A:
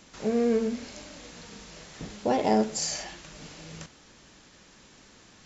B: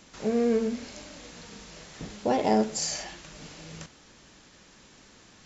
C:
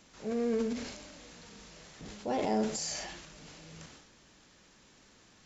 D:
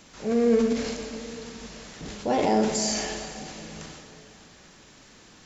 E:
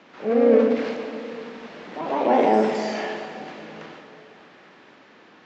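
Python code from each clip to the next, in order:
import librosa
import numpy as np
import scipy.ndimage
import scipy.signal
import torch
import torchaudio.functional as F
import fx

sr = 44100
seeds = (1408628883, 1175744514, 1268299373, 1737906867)

y1 = x
y2 = fx.transient(y1, sr, attack_db=-4, sustain_db=8)
y2 = y2 * librosa.db_to_amplitude(-6.5)
y3 = fx.rev_plate(y2, sr, seeds[0], rt60_s=3.3, hf_ratio=0.75, predelay_ms=0, drr_db=6.5)
y3 = y3 * librosa.db_to_amplitude(8.0)
y4 = fx.echo_pitch(y3, sr, ms=85, semitones=2, count=2, db_per_echo=-6.0)
y4 = fx.bandpass_edges(y4, sr, low_hz=280.0, high_hz=2600.0)
y4 = fx.air_absorb(y4, sr, metres=92.0)
y4 = y4 * librosa.db_to_amplitude(5.5)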